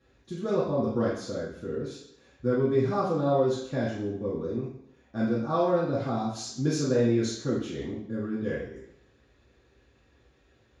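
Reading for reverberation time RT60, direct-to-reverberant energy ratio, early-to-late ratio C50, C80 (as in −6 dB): 0.70 s, −9.5 dB, 2.0 dB, 6.0 dB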